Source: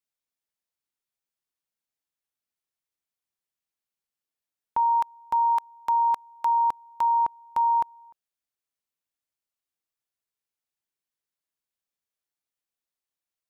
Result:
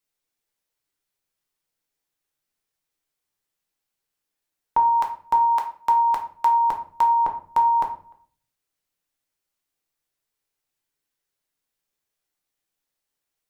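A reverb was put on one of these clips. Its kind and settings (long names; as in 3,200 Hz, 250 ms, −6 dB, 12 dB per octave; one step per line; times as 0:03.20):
rectangular room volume 41 cubic metres, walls mixed, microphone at 0.48 metres
level +5.5 dB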